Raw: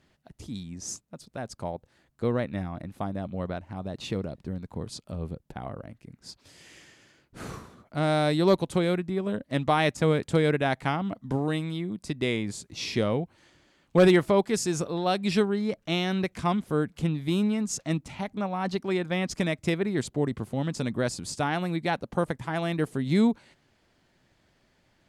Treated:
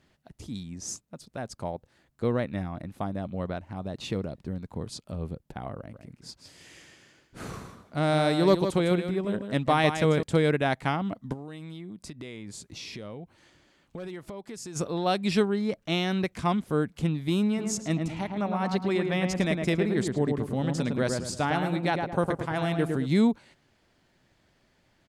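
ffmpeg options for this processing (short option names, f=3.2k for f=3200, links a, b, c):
-filter_complex "[0:a]asettb=1/sr,asplit=3[a][b][c];[a]atrim=end=5.784[d];[b]atrim=start=5.78:end=10.23,asetpts=PTS-STARTPTS,afade=t=in:d=0.004:c=qsin,afade=t=out:st=4.446:d=0.004:c=qsin,aecho=1:1:155:0.376,atrim=end_sample=196245[e];[c]atrim=start=10.226[f];[d][e]acrossfade=d=0.004:c1=hsin:c2=qsin[g];[g][f]acrossfade=d=0.004:c1=qsin:c2=hsin,asplit=3[h][i][j];[h]afade=t=out:st=11.32:d=0.02[k];[i]acompressor=threshold=-37dB:ratio=6:attack=3.2:release=140:knee=1:detection=peak,afade=t=in:st=11.32:d=0.02,afade=t=out:st=14.75:d=0.02[l];[j]afade=t=in:st=14.75:d=0.02[m];[k][l][m]amix=inputs=3:normalize=0,asplit=3[n][o][p];[n]afade=t=out:st=17.57:d=0.02[q];[o]asplit=2[r][s];[s]adelay=108,lowpass=f=1.6k:p=1,volume=-3.5dB,asplit=2[t][u];[u]adelay=108,lowpass=f=1.6k:p=1,volume=0.4,asplit=2[v][w];[w]adelay=108,lowpass=f=1.6k:p=1,volume=0.4,asplit=2[x][y];[y]adelay=108,lowpass=f=1.6k:p=1,volume=0.4,asplit=2[z][aa];[aa]adelay=108,lowpass=f=1.6k:p=1,volume=0.4[ab];[r][t][v][x][z][ab]amix=inputs=6:normalize=0,afade=t=in:st=17.57:d=0.02,afade=t=out:st=23.05:d=0.02[ac];[p]afade=t=in:st=23.05:d=0.02[ad];[q][ac][ad]amix=inputs=3:normalize=0"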